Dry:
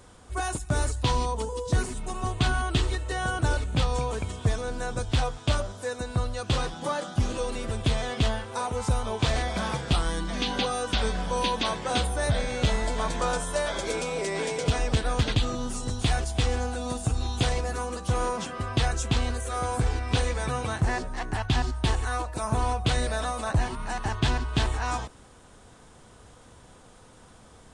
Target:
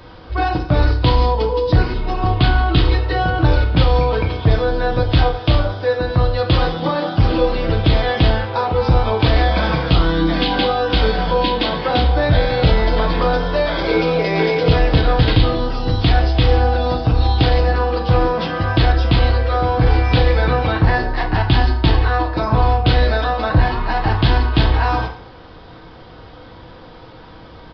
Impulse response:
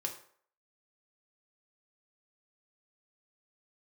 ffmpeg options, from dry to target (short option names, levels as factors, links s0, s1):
-filter_complex "[0:a]acrossover=split=340[s0][s1];[s1]acompressor=threshold=0.0355:ratio=6[s2];[s0][s2]amix=inputs=2:normalize=0,asplit=2[s3][s4];[s4]volume=12.6,asoftclip=hard,volume=0.0794,volume=0.708[s5];[s3][s5]amix=inputs=2:normalize=0[s6];[1:a]atrim=start_sample=2205,asetrate=40131,aresample=44100[s7];[s6][s7]afir=irnorm=-1:irlink=0,aresample=11025,aresample=44100,volume=2.24"